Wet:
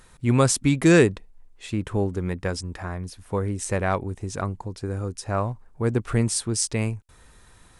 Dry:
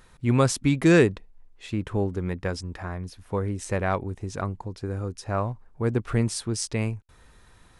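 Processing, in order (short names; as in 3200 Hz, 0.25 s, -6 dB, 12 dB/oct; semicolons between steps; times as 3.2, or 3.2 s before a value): bell 8700 Hz +6.5 dB 0.91 oct; gain +1.5 dB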